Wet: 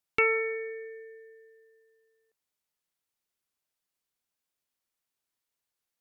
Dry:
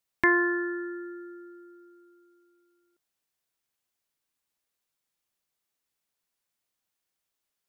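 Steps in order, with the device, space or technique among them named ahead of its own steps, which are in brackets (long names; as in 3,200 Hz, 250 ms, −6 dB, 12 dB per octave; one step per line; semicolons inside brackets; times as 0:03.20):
nightcore (speed change +28%)
level −2 dB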